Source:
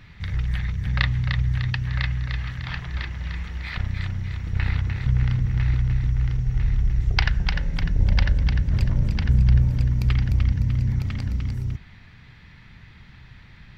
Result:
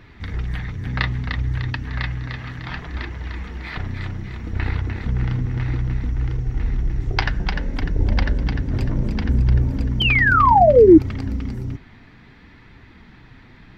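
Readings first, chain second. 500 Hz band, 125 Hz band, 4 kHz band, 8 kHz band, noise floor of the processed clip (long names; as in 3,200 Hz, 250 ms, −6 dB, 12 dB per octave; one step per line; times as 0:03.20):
+26.0 dB, −1.5 dB, +4.5 dB, can't be measured, −47 dBFS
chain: sound drawn into the spectrogram fall, 0:10.00–0:10.98, 300–3,200 Hz −18 dBFS
notch filter 560 Hz, Q 14
flanger 0.63 Hz, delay 1.8 ms, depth 6.4 ms, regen −49%
drawn EQ curve 160 Hz 0 dB, 270 Hz +13 dB, 2,800 Hz 0 dB
level +3 dB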